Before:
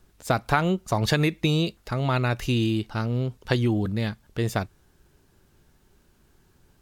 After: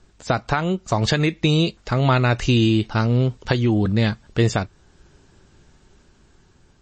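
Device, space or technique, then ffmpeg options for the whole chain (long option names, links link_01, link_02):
low-bitrate web radio: -af "dynaudnorm=framelen=650:gausssize=5:maxgain=4dB,alimiter=limit=-11.5dB:level=0:latency=1:release=458,volume=5dB" -ar 22050 -c:a libmp3lame -b:a 32k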